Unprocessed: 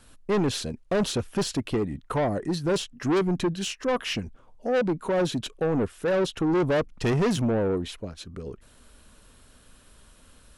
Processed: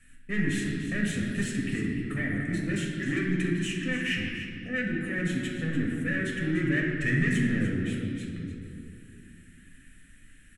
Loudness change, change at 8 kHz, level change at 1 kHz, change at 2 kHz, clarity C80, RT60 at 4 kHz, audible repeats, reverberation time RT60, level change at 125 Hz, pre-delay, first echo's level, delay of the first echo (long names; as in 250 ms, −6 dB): −2.5 dB, −5.0 dB, −16.5 dB, +6.5 dB, 2.0 dB, 1.4 s, 1, 2.3 s, +0.5 dB, 7 ms, −10.5 dB, 295 ms